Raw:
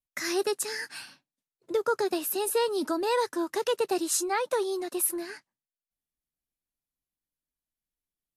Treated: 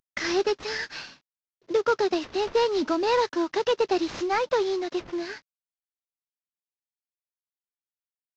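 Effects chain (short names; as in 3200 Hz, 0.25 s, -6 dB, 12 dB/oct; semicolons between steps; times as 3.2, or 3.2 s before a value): CVSD 32 kbps; gain +4 dB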